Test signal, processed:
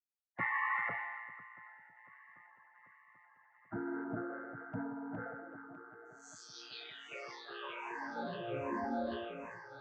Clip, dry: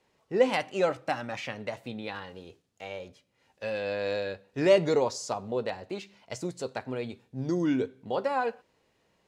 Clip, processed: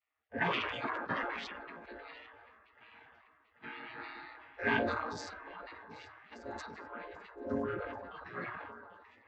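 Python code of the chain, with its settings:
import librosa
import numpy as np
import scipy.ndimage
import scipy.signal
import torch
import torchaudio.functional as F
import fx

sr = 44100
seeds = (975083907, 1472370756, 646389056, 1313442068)

y = fx.chord_vocoder(x, sr, chord='minor triad', root=46)
y = fx.peak_eq(y, sr, hz=1600.0, db=11.5, octaves=0.22)
y = fx.echo_alternate(y, sr, ms=394, hz=1300.0, feedback_pct=80, wet_db=-12)
y = fx.noise_reduce_blind(y, sr, reduce_db=9)
y = fx.notch(y, sr, hz=470.0, q=12.0)
y = fx.dynamic_eq(y, sr, hz=1100.0, q=2.3, threshold_db=-44.0, ratio=4.0, max_db=-4)
y = scipy.signal.sosfilt(scipy.signal.butter(2, 2100.0, 'lowpass', fs=sr, output='sos'), y)
y = fx.spec_gate(y, sr, threshold_db=-20, keep='weak')
y = fx.sustainer(y, sr, db_per_s=31.0)
y = y * librosa.db_to_amplitude(9.5)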